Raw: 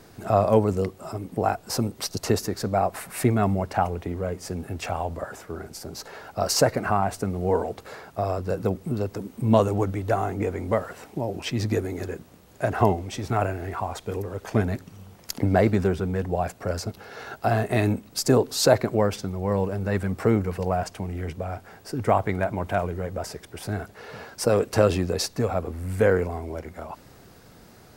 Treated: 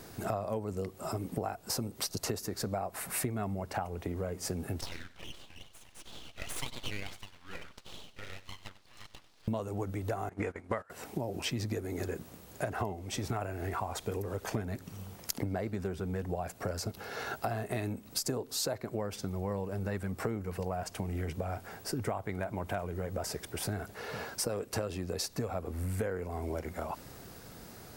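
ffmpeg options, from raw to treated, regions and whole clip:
ffmpeg -i in.wav -filter_complex "[0:a]asettb=1/sr,asplit=3[link_01][link_02][link_03];[link_01]atrim=end=4.814[link_04];[link_02]atrim=start=4.81:end=9.48,asetpts=PTS-STARTPTS,afade=type=in:duration=0.004:curve=qsin,afade=type=out:start_time=4.666:duration=0.004:curve=qsin,asuperpass=centerf=2100:order=4:qfactor=1.1,aeval=exprs='abs(val(0))':channel_layout=same,aecho=1:1:95:0.158,atrim=end_sample=205947[link_05];[link_03]atrim=start=9.476[link_06];[link_04][link_05]acrossfade=duration=0.004:curve1=hsin:curve2=qsin[link_07];[link_07][link_06]acrossfade=duration=0.004:curve1=qsin:curve2=hsin,asettb=1/sr,asplit=3[link_08][link_09][link_10];[link_08]atrim=end=10.294[link_11];[link_09]atrim=start=10.29:end=10.9,asetpts=PTS-STARTPTS,afade=type=in:duration=0.004:curve=qsin,afade=type=out:start_time=0.606:duration=0.004:curve=qsin,agate=range=-22dB:threshold=-29dB:ratio=16:release=100:detection=peak,lowpass=frequency=11000:width=0.5412,lowpass=frequency=11000:width=1.3066,equalizer=frequency=1600:width_type=o:width=1.5:gain=11[link_12];[link_10]atrim=start=10.896[link_13];[link_11][link_12]acrossfade=duration=0.004:curve1=hsin:curve2=qsin[link_14];[link_14][link_13]acrossfade=duration=0.004:curve1=qsin:curve2=hsin,highshelf=frequency=7300:gain=6.5,acompressor=threshold=-31dB:ratio=12" out.wav

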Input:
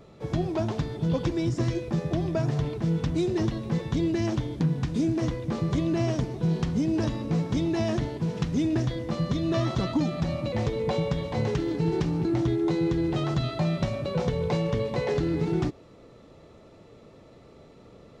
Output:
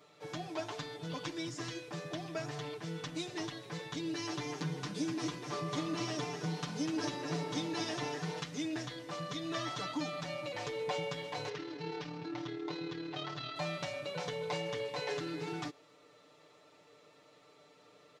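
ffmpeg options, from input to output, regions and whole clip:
ffmpeg -i in.wav -filter_complex "[0:a]asettb=1/sr,asplit=3[link_01][link_02][link_03];[link_01]atrim=end=4.054[link_04];[link_02]atrim=start=4.05:end=8.4,asetpts=PTS-STARTPTS,afade=type=in:duration=0.004:curve=qsin,afade=type=out:start_time=4.346:duration=0.004:curve=qsin,aecho=1:1:6.9:0.6,atrim=end_sample=191835,asplit=5[link_05][link_06][link_07][link_08][link_09];[link_06]adelay=248,afreqshift=43,volume=-6dB[link_10];[link_07]adelay=496,afreqshift=86,volume=-15.6dB[link_11];[link_08]adelay=744,afreqshift=129,volume=-25.3dB[link_12];[link_09]adelay=992,afreqshift=172,volume=-34.9dB[link_13];[link_05][link_10][link_11][link_12][link_13]amix=inputs=5:normalize=0,atrim=end_sample=191835[link_14];[link_03]atrim=start=8.396[link_15];[link_04][link_14]acrossfade=duration=0.004:curve1=hsin:curve2=qsin[link_16];[link_16][link_15]acrossfade=duration=0.004:curve1=qsin:curve2=hsin,asettb=1/sr,asplit=3[link_17][link_18][link_19];[link_17]atrim=end=11.494[link_20];[link_18]atrim=start=11.49:end=13.56,asetpts=PTS-STARTPTS,afade=type=in:duration=0.004:curve=qsin,afade=type=out:start_time=2.066:duration=0.004:curve=qsin,lowpass=frequency=5500:width=0.5412,lowpass=frequency=5500:width=1.3066,tremolo=f=37:d=0.571[link_21];[link_19]atrim=start=13.556[link_22];[link_20][link_21]acrossfade=duration=0.004:curve1=hsin:curve2=qsin[link_23];[link_23][link_22]acrossfade=duration=0.004:curve1=qsin:curve2=hsin,highpass=frequency=1400:poles=1,aecho=1:1:6.7:0.9,volume=-3.5dB" out.wav

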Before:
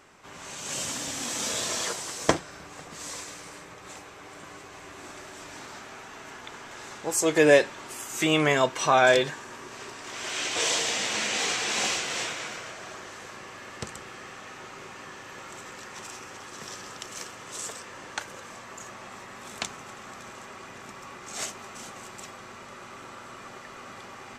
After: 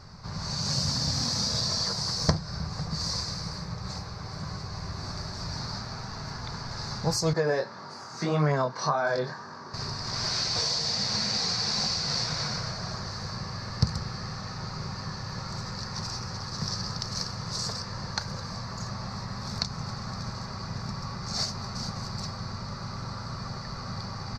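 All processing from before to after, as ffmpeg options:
ffmpeg -i in.wav -filter_complex "[0:a]asettb=1/sr,asplit=3[link_01][link_02][link_03];[link_01]atrim=end=7.334[link_04];[link_02]atrim=start=7.33:end=9.74,asetpts=PTS-STARTPTS,afade=type=in:duration=0.004:curve=qsin,afade=type=out:start_time=2.406:duration=0.004:curve=qsin,highshelf=frequency=2000:width_type=q:width=1.5:gain=-6,flanger=delay=20:depth=4.1:speed=1.8,highpass=250,lowpass=6600[link_05];[link_03]atrim=start=9.736[link_06];[link_04][link_05]acrossfade=duration=0.004:curve1=hsin:curve2=qsin[link_07];[link_07][link_06]acrossfade=duration=0.004:curve1=qsin:curve2=hsin,firequalizer=gain_entry='entry(170,0);entry(300,-16);entry(470,-8);entry(1000,-4);entry(3100,-19);entry(4500,13);entry(7400,-13)':delay=0.05:min_phase=1,acompressor=threshold=-32dB:ratio=6,bass=frequency=250:gain=13,treble=frequency=4000:gain=-4,volume=8.5dB" out.wav

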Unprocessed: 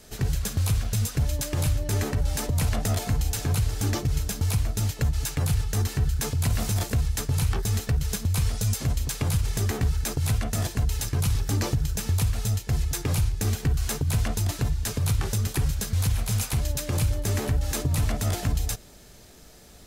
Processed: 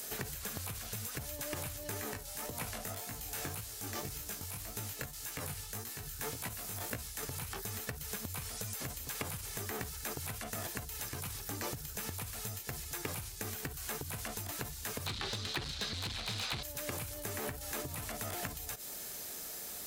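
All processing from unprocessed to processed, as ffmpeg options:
ffmpeg -i in.wav -filter_complex "[0:a]asettb=1/sr,asplit=3[link_01][link_02][link_03];[link_01]atrim=end=2.014[link_04];[link_02]atrim=start=2.01:end=7.23,asetpts=PTS-STARTPTS,afade=type=in:duration=0.004:curve=qsin,afade=type=out:start_time=5.216:duration=0.004:curve=qsin,tremolo=f=1.4:d=0.72,flanger=delay=17:depth=5.3:speed=1.8[link_05];[link_03]atrim=start=7.226[link_06];[link_04][link_05]acrossfade=duration=0.004:curve1=hsin:curve2=qsin[link_07];[link_07][link_06]acrossfade=duration=0.004:curve1=qsin:curve2=hsin,asettb=1/sr,asplit=3[link_08][link_09][link_10];[link_08]atrim=end=15.064[link_11];[link_09]atrim=start=15.06:end=16.63,asetpts=PTS-STARTPTS,afade=type=in:duration=0.004:curve=qsin,afade=type=out:start_time=1.566:duration=0.004:curve=qsin,lowpass=frequency=4000:width_type=q:width=3.9,aeval=exprs='0.237*sin(PI/2*1.78*val(0)/0.237)':channel_layout=same[link_12];[link_10]atrim=start=16.626[link_13];[link_11][link_12]acrossfade=duration=0.004:curve1=hsin:curve2=qsin[link_14];[link_14][link_13]acrossfade=duration=0.004:curve1=qsin:curve2=hsin,acompressor=threshold=-34dB:ratio=6,aemphasis=mode=production:type=riaa,acrossover=split=2500[link_15][link_16];[link_16]acompressor=threshold=-44dB:ratio=4:attack=1:release=60[link_17];[link_15][link_17]amix=inputs=2:normalize=0,volume=3.5dB" out.wav

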